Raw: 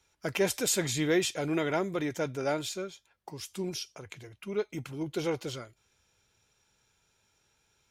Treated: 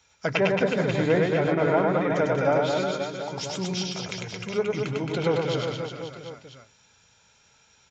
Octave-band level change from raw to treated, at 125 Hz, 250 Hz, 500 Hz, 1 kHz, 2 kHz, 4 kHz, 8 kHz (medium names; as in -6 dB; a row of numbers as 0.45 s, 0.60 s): +9.5 dB, +6.0 dB, +8.5 dB, +10.5 dB, +7.0 dB, +3.5 dB, -5.5 dB